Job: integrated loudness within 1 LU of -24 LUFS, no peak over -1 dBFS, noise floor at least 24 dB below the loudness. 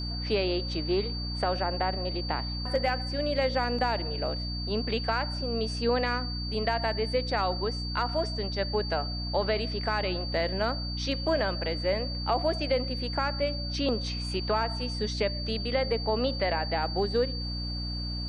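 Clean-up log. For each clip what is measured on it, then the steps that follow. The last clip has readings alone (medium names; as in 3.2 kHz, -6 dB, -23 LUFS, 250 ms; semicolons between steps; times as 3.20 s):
hum 60 Hz; highest harmonic 300 Hz; hum level -32 dBFS; steady tone 4.6 kHz; tone level -36 dBFS; loudness -29.0 LUFS; peak level -14.5 dBFS; loudness target -24.0 LUFS
-> hum notches 60/120/180/240/300 Hz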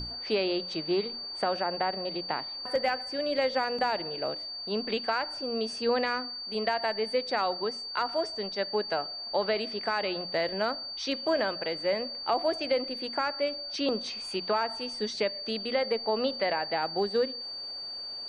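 hum not found; steady tone 4.6 kHz; tone level -36 dBFS
-> band-stop 4.6 kHz, Q 30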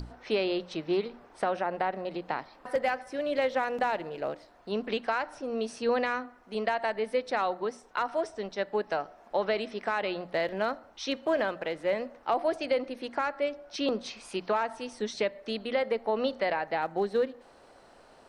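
steady tone not found; loudness -31.5 LUFS; peak level -16.0 dBFS; loudness target -24.0 LUFS
-> trim +7.5 dB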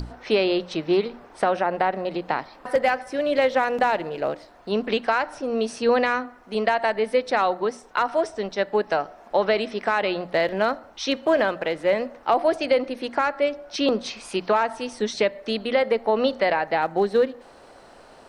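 loudness -24.0 LUFS; peak level -8.5 dBFS; noise floor -49 dBFS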